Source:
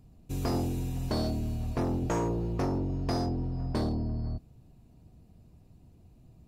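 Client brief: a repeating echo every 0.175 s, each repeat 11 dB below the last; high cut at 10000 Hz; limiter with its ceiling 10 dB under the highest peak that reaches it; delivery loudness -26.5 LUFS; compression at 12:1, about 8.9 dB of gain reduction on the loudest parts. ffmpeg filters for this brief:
-af "lowpass=10k,acompressor=threshold=-35dB:ratio=12,alimiter=level_in=13.5dB:limit=-24dB:level=0:latency=1,volume=-13.5dB,aecho=1:1:175|350|525:0.282|0.0789|0.0221,volume=17.5dB"

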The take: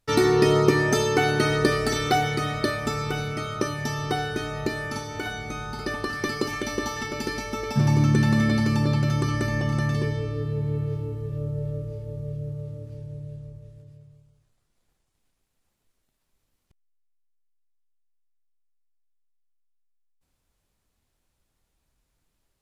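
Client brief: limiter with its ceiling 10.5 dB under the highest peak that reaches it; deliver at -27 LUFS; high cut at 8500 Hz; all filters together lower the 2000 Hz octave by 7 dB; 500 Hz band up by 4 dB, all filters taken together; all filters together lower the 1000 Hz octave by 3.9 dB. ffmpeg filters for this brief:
-af "lowpass=8.5k,equalizer=f=500:t=o:g=7,equalizer=f=1k:t=o:g=-7.5,equalizer=f=2k:t=o:g=-6.5,volume=-2dB,alimiter=limit=-13.5dB:level=0:latency=1"

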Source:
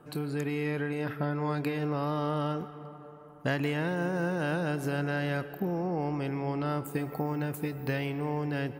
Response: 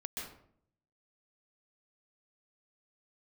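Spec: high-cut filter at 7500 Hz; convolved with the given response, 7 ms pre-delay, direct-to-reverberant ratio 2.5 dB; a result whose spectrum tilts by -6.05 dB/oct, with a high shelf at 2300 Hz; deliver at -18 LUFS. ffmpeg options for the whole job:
-filter_complex "[0:a]lowpass=7.5k,highshelf=f=2.3k:g=-8.5,asplit=2[a][b];[1:a]atrim=start_sample=2205,adelay=7[c];[b][c]afir=irnorm=-1:irlink=0,volume=-2.5dB[d];[a][d]amix=inputs=2:normalize=0,volume=11dB"

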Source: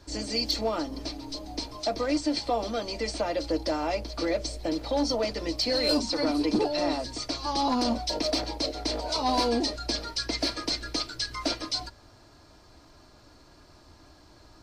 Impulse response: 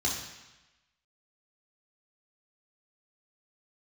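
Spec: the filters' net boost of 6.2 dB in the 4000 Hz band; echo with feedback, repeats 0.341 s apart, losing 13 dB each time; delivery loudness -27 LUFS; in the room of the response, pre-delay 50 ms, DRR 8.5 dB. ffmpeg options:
-filter_complex "[0:a]equalizer=f=4k:t=o:g=7,aecho=1:1:341|682|1023:0.224|0.0493|0.0108,asplit=2[a][b];[1:a]atrim=start_sample=2205,adelay=50[c];[b][c]afir=irnorm=-1:irlink=0,volume=-16dB[d];[a][d]amix=inputs=2:normalize=0,volume=-3dB"

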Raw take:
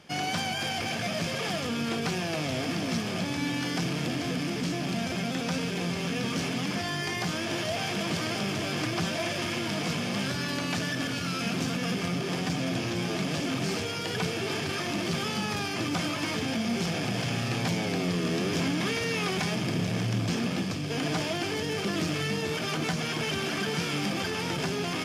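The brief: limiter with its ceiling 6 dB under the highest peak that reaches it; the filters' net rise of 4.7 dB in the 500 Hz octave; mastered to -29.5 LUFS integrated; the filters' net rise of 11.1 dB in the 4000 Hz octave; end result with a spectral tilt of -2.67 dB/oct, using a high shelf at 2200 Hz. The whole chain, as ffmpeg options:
-af "equalizer=f=500:t=o:g=5.5,highshelf=f=2.2k:g=8.5,equalizer=f=4k:t=o:g=6.5,volume=-5.5dB,alimiter=limit=-20.5dB:level=0:latency=1"

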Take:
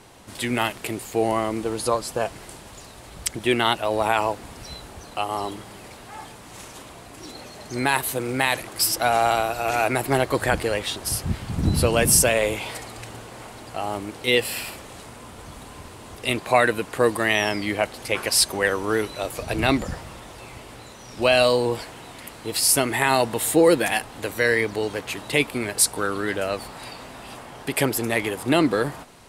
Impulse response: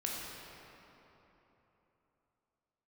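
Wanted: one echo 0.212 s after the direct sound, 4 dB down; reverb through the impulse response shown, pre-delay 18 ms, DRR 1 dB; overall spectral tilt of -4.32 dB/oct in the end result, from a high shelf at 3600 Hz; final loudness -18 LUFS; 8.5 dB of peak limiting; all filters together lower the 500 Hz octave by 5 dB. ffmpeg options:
-filter_complex "[0:a]equalizer=f=500:t=o:g=-6,highshelf=f=3.6k:g=-8.5,alimiter=limit=-15dB:level=0:latency=1,aecho=1:1:212:0.631,asplit=2[a][b];[1:a]atrim=start_sample=2205,adelay=18[c];[b][c]afir=irnorm=-1:irlink=0,volume=-4dB[d];[a][d]amix=inputs=2:normalize=0,volume=7dB"

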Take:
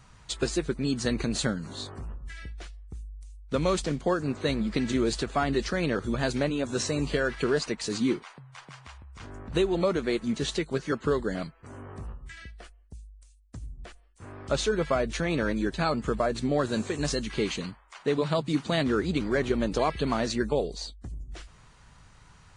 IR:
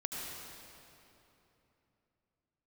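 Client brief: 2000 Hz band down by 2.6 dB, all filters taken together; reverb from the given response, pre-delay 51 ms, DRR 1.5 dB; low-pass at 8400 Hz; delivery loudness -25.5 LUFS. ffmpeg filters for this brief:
-filter_complex "[0:a]lowpass=8.4k,equalizer=f=2k:t=o:g=-3.5,asplit=2[a][b];[1:a]atrim=start_sample=2205,adelay=51[c];[b][c]afir=irnorm=-1:irlink=0,volume=-3.5dB[d];[a][d]amix=inputs=2:normalize=0,volume=1dB"

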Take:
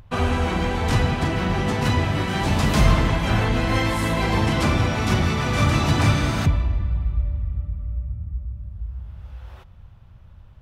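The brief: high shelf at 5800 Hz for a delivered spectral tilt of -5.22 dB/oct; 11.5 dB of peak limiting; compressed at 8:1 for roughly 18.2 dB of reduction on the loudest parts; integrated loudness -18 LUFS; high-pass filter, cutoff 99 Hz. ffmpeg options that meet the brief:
-af "highpass=99,highshelf=f=5.8k:g=7,acompressor=threshold=-35dB:ratio=8,volume=25.5dB,alimiter=limit=-9dB:level=0:latency=1"

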